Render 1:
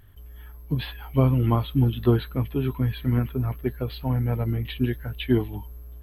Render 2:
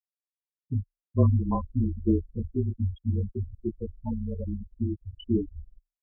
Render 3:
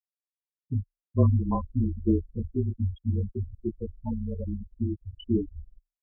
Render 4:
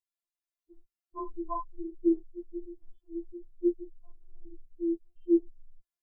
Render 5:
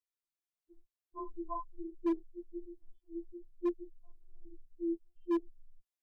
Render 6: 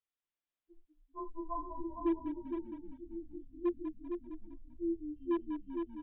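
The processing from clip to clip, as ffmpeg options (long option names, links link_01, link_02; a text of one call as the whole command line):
ffmpeg -i in.wav -af "flanger=delay=20:depth=2.6:speed=0.49,afftfilt=real='re*gte(hypot(re,im),0.112)':imag='im*gte(hypot(re,im),0.112)':win_size=1024:overlap=0.75,afreqshift=-28" out.wav
ffmpeg -i in.wav -af anull out.wav
ffmpeg -i in.wav -af "afftfilt=real='re*4*eq(mod(b,16),0)':imag='im*4*eq(mod(b,16),0)':win_size=2048:overlap=0.75" out.wav
ffmpeg -i in.wav -af "asoftclip=type=hard:threshold=-21.5dB,volume=-5dB" out.wav
ffmpeg -i in.wav -filter_complex "[0:a]asplit=2[link_01][link_02];[link_02]asplit=4[link_03][link_04][link_05][link_06];[link_03]adelay=195,afreqshift=-35,volume=-8dB[link_07];[link_04]adelay=390,afreqshift=-70,volume=-16.4dB[link_08];[link_05]adelay=585,afreqshift=-105,volume=-24.8dB[link_09];[link_06]adelay=780,afreqshift=-140,volume=-33.2dB[link_10];[link_07][link_08][link_09][link_10]amix=inputs=4:normalize=0[link_11];[link_01][link_11]amix=inputs=2:normalize=0,aresample=8000,aresample=44100,asplit=2[link_12][link_13];[link_13]aecho=0:1:460:0.473[link_14];[link_12][link_14]amix=inputs=2:normalize=0" out.wav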